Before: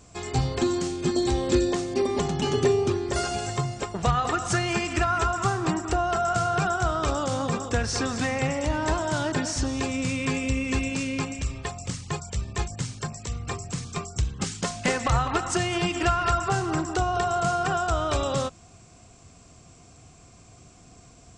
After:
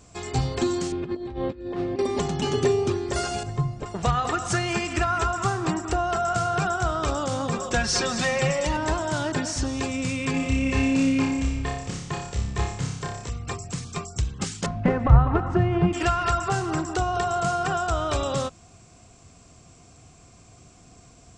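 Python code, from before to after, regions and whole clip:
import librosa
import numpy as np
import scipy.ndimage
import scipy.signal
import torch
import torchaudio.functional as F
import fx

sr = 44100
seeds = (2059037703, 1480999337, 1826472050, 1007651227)

y = fx.chain(x, sr, fx.over_compress(threshold_db=-28.0, ratio=-0.5),
    fx.air_absorb(metres=400.0), at=(0.92, 1.99))
y = fx.chain(y, sr, fx.tilt_eq(slope=-3.0),
    fx.comb_fb(f0_hz=150.0, decay_s=0.18, harmonics='all', damping=0.0, mix_pct=70), at=(3.43, 3.86))
y = fx.chain(y, sr, fx.dynamic_eq(hz=4200.0, q=0.88, threshold_db=-41.0, ratio=4.0, max_db=4),
    fx.comb(ms=5.5, depth=0.85), at=(7.58, 8.77))
y = fx.chain(y, sr, fx.high_shelf(hz=4700.0, db=-7.5),
    fx.room_flutter(wall_m=5.1, rt60_s=0.67), at=(10.31, 13.3))
y = fx.chain(y, sr, fx.lowpass(hz=1400.0, slope=12),
    fx.low_shelf(hz=270.0, db=11.5), at=(14.66, 15.93))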